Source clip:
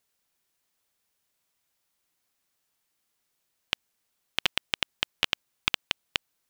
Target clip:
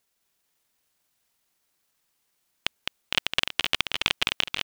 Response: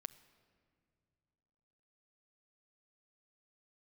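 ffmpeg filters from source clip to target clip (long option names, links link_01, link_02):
-af "atempo=1.4,aecho=1:1:210|483|837.9|1299|1899:0.631|0.398|0.251|0.158|0.1,volume=2dB"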